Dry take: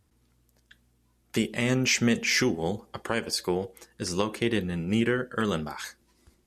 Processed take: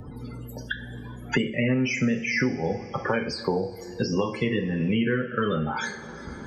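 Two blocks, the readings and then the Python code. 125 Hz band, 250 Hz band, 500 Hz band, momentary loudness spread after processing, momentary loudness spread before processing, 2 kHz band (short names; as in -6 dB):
+3.5 dB, +2.0 dB, +2.0 dB, 14 LU, 13 LU, +1.5 dB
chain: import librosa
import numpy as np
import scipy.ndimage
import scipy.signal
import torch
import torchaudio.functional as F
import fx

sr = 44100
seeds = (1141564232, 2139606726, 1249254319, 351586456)

y = fx.spec_topn(x, sr, count=32)
y = fx.rev_double_slope(y, sr, seeds[0], early_s=0.35, late_s=1.6, knee_db=-18, drr_db=2.5)
y = fx.band_squash(y, sr, depth_pct=100)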